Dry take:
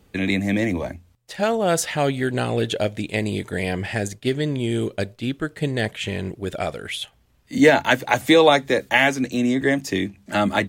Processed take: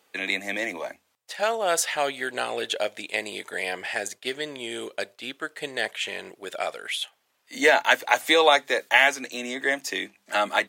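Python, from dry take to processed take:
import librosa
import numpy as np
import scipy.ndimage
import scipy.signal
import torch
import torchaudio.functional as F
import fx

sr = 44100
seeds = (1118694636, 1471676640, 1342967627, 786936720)

y = scipy.signal.sosfilt(scipy.signal.butter(2, 650.0, 'highpass', fs=sr, output='sos'), x)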